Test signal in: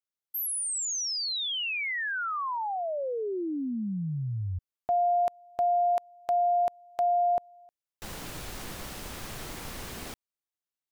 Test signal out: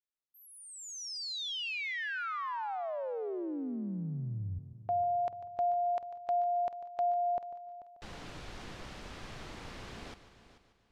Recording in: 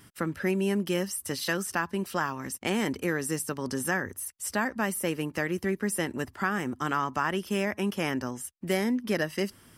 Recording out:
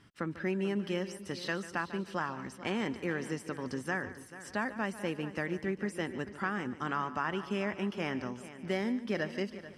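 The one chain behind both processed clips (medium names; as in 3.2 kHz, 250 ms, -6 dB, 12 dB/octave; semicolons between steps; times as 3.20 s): low-pass 4.7 kHz 12 dB/octave; multi-head delay 146 ms, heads first and third, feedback 40%, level -15 dB; trim -5.5 dB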